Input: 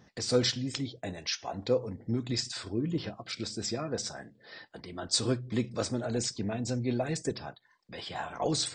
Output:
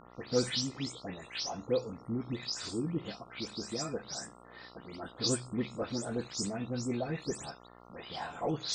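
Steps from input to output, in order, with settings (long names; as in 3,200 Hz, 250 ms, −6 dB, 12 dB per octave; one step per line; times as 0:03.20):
every frequency bin delayed by itself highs late, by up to 184 ms
hum with harmonics 60 Hz, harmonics 23, −53 dBFS 0 dB per octave
level −3 dB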